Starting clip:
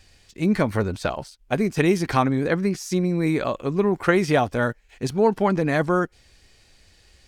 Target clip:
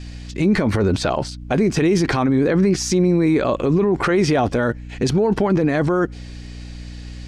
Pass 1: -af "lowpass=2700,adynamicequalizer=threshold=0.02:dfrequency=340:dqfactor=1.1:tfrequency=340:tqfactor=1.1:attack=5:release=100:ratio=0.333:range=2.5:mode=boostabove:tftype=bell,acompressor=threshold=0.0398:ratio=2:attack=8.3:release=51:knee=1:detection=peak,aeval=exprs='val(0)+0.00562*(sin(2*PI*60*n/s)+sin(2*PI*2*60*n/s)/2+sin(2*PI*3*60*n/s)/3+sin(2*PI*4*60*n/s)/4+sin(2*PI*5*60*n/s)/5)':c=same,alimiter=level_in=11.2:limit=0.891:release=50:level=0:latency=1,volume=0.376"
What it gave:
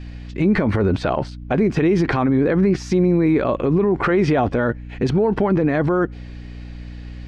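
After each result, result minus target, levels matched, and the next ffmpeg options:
8 kHz band -13.5 dB; compression: peak gain reduction +4 dB
-af "lowpass=7100,adynamicequalizer=threshold=0.02:dfrequency=340:dqfactor=1.1:tfrequency=340:tqfactor=1.1:attack=5:release=100:ratio=0.333:range=2.5:mode=boostabove:tftype=bell,acompressor=threshold=0.0398:ratio=2:attack=8.3:release=51:knee=1:detection=peak,aeval=exprs='val(0)+0.00562*(sin(2*PI*60*n/s)+sin(2*PI*2*60*n/s)/2+sin(2*PI*3*60*n/s)/3+sin(2*PI*4*60*n/s)/4+sin(2*PI*5*60*n/s)/5)':c=same,alimiter=level_in=11.2:limit=0.891:release=50:level=0:latency=1,volume=0.376"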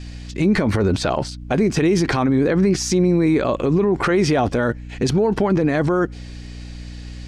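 compression: peak gain reduction +4 dB
-af "lowpass=7100,adynamicequalizer=threshold=0.02:dfrequency=340:dqfactor=1.1:tfrequency=340:tqfactor=1.1:attack=5:release=100:ratio=0.333:range=2.5:mode=boostabove:tftype=bell,acompressor=threshold=0.1:ratio=2:attack=8.3:release=51:knee=1:detection=peak,aeval=exprs='val(0)+0.00562*(sin(2*PI*60*n/s)+sin(2*PI*2*60*n/s)/2+sin(2*PI*3*60*n/s)/3+sin(2*PI*4*60*n/s)/4+sin(2*PI*5*60*n/s)/5)':c=same,alimiter=level_in=11.2:limit=0.891:release=50:level=0:latency=1,volume=0.376"

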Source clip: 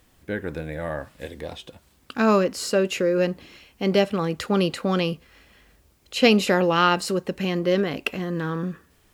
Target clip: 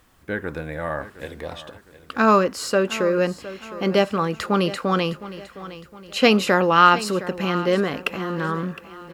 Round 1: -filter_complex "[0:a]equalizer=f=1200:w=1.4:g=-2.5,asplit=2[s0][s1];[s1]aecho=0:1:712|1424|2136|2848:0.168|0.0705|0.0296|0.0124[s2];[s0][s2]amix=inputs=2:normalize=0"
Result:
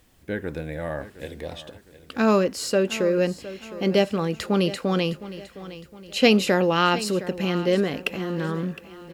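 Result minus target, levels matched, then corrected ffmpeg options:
1 kHz band -5.5 dB
-filter_complex "[0:a]equalizer=f=1200:w=1.4:g=7.5,asplit=2[s0][s1];[s1]aecho=0:1:712|1424|2136|2848:0.168|0.0705|0.0296|0.0124[s2];[s0][s2]amix=inputs=2:normalize=0"

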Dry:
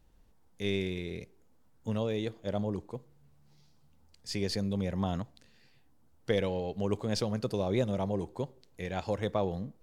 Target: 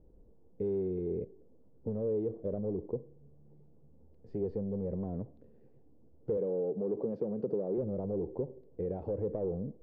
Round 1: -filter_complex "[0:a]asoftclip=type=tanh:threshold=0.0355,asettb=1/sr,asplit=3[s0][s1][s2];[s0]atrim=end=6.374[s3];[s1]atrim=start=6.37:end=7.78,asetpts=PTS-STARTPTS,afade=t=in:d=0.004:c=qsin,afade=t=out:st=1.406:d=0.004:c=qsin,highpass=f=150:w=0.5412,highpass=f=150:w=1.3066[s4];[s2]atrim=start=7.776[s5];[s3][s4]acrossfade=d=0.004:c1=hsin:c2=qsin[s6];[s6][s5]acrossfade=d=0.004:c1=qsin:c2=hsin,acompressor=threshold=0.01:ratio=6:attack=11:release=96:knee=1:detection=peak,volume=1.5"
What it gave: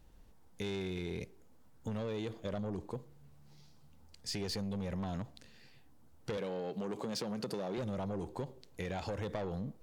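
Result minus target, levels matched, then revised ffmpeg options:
500 Hz band -3.0 dB
-filter_complex "[0:a]asoftclip=type=tanh:threshold=0.0355,asettb=1/sr,asplit=3[s0][s1][s2];[s0]atrim=end=6.374[s3];[s1]atrim=start=6.37:end=7.78,asetpts=PTS-STARTPTS,afade=t=in:d=0.004:c=qsin,afade=t=out:st=1.406:d=0.004:c=qsin,highpass=f=150:w=0.5412,highpass=f=150:w=1.3066[s4];[s2]atrim=start=7.776[s5];[s3][s4]acrossfade=d=0.004:c1=hsin:c2=qsin[s6];[s6][s5]acrossfade=d=0.004:c1=qsin:c2=hsin,acompressor=threshold=0.01:ratio=6:attack=11:release=96:knee=1:detection=peak,lowpass=f=450:t=q:w=2.7,volume=1.5"

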